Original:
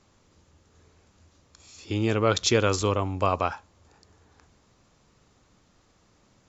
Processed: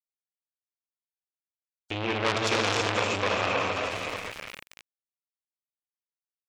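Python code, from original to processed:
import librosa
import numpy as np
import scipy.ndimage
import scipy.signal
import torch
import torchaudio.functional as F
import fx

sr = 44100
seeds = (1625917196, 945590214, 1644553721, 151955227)

p1 = fx.rattle_buzz(x, sr, strikes_db=-35.0, level_db=-28.0)
p2 = fx.peak_eq(p1, sr, hz=490.0, db=4.5, octaves=0.88)
p3 = p2 + fx.echo_diffused(p2, sr, ms=536, feedback_pct=44, wet_db=-9, dry=0)
p4 = fx.rev_gated(p3, sr, seeds[0], gate_ms=430, shape='flat', drr_db=-2.0)
p5 = np.where(np.abs(p4) >= 10.0 ** (-28.5 / 20.0), p4, 0.0)
p6 = fx.peak_eq(p5, sr, hz=2400.0, db=10.5, octaves=1.0)
p7 = fx.spec_gate(p6, sr, threshold_db=-30, keep='strong')
p8 = fx.transformer_sat(p7, sr, knee_hz=3100.0)
y = p8 * librosa.db_to_amplitude(-4.0)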